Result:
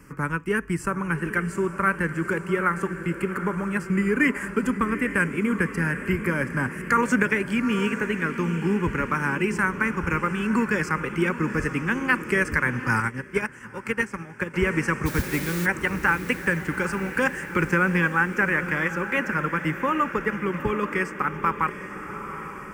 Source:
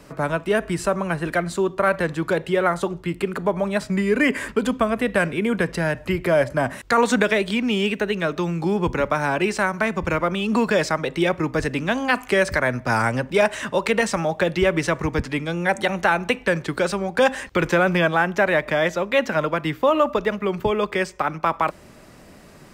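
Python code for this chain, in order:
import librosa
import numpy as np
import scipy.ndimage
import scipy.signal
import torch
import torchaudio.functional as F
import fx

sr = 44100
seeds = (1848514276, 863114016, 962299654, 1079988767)

y = fx.fixed_phaser(x, sr, hz=1600.0, stages=4)
y = fx.quant_dither(y, sr, seeds[0], bits=6, dither='triangular', at=(15.05, 15.65), fade=0.02)
y = fx.transient(y, sr, attack_db=1, sustain_db=-4)
y = fx.echo_diffused(y, sr, ms=825, feedback_pct=58, wet_db=-10.5)
y = fx.upward_expand(y, sr, threshold_db=-28.0, expansion=2.5, at=(13.0, 14.54))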